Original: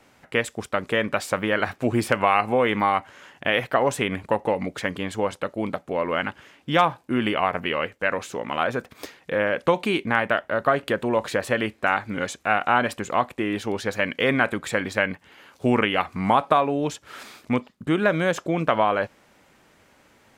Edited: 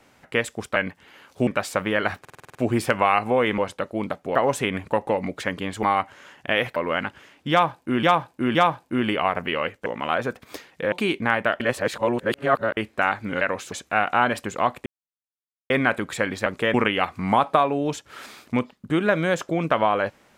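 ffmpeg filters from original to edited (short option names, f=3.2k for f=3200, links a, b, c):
-filter_complex "[0:a]asplit=26[a][b][c][d][e][f][g][h][i][j][k][l][m][n][o][p][q][r][s][t][u][v][w][x][y][z];[a]atrim=end=0.762[aa];[b]atrim=start=14.998:end=15.712[ab];[c]atrim=start=1.038:end=1.822[ac];[d]atrim=start=1.768:end=1.822[ad];[e]atrim=start=1.768:end=1.822[ae];[f]atrim=start=1.768:end=1.822[af];[g]atrim=start=1.768:end=1.822[ag];[h]atrim=start=1.768:end=1.822[ah];[i]atrim=start=1.768:end=1.822[ai];[j]atrim=start=1.768:end=2.802[aj];[k]atrim=start=5.208:end=5.982[ak];[l]atrim=start=3.728:end=5.212[al];[m]atrim=start=2.798:end=3.732[am];[n]atrim=start=5.978:end=7.252[an];[o]atrim=start=6.728:end=7.252[ao];[p]atrim=start=6.728:end=8.042[ap];[q]atrim=start=8.348:end=9.412[aq];[r]atrim=start=9.768:end=10.452[ar];[s]atrim=start=10.448:end=11.622,asetpts=PTS-STARTPTS,areverse[as];[t]atrim=start=11.618:end=12.262[at];[u]atrim=start=8.038:end=8.352[au];[v]atrim=start=12.258:end=13.4,asetpts=PTS-STARTPTS,afade=t=out:st=1.138:d=0.004:c=hsin[av];[w]atrim=start=13.4:end=14.24,asetpts=PTS-STARTPTS,volume=0[aw];[x]atrim=start=14.24:end=15.002,asetpts=PTS-STARTPTS,afade=t=in:d=0.004:c=hsin[ax];[y]atrim=start=0.758:end=1.042[ay];[z]atrim=start=15.708[az];[aa][ab]acrossfade=d=0.004:c1=hsin:c2=hsin[ba];[ba][ac]acrossfade=d=0.004:c1=hsin:c2=hsin[bb];[bb][ad]acrossfade=d=0.004:c1=hsin:c2=hsin[bc];[bc][ae]acrossfade=d=0.004:c1=hsin:c2=hsin[bd];[bd][af]acrossfade=d=0.004:c1=hsin:c2=hsin[be];[be][ag]acrossfade=d=0.004:c1=hsin:c2=hsin[bf];[bf][ah]acrossfade=d=0.004:c1=hsin:c2=hsin[bg];[bg][ai]acrossfade=d=0.004:c1=hsin:c2=hsin[bh];[bh][aj]acrossfade=d=0.004:c1=hsin:c2=hsin[bi];[bi][ak]acrossfade=d=0.004:c1=hsin:c2=hsin[bj];[bj][al]acrossfade=d=0.004:c1=hsin:c2=hsin[bk];[bk][am]acrossfade=d=0.004:c1=hsin:c2=hsin[bl];[bl][an]acrossfade=d=0.004:c1=hsin:c2=hsin[bm];[bm][ao]acrossfade=d=0.004:c1=hsin:c2=hsin[bn];[bn][ap]acrossfade=d=0.004:c1=hsin:c2=hsin[bo];[bo][aq]acrossfade=d=0.004:c1=hsin:c2=hsin[bp];[bp][ar]acrossfade=d=0.004:c1=hsin:c2=hsin[bq];[bq][as]acrossfade=d=0.004:c1=hsin:c2=hsin[br];[br][at]acrossfade=d=0.004:c1=hsin:c2=hsin[bs];[bs][au]acrossfade=d=0.004:c1=hsin:c2=hsin[bt];[av][aw][ax]concat=n=3:v=0:a=1[bu];[bt][bu]acrossfade=d=0.004:c1=hsin:c2=hsin[bv];[bv][ay]acrossfade=d=0.004:c1=hsin:c2=hsin[bw];[bw][az]acrossfade=d=0.004:c1=hsin:c2=hsin"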